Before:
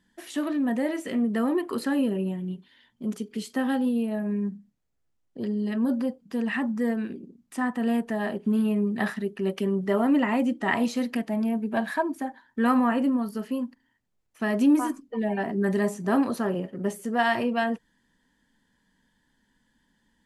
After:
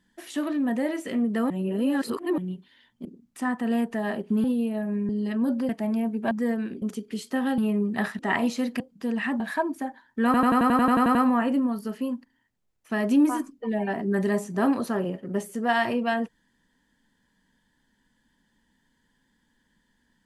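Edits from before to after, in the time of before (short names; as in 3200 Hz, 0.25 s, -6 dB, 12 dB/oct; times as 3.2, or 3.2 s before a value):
1.5–2.38 reverse
3.05–3.81 swap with 7.21–8.6
4.46–5.5 cut
6.1–6.7 swap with 11.18–11.8
9.21–10.57 cut
12.65 stutter 0.09 s, 11 plays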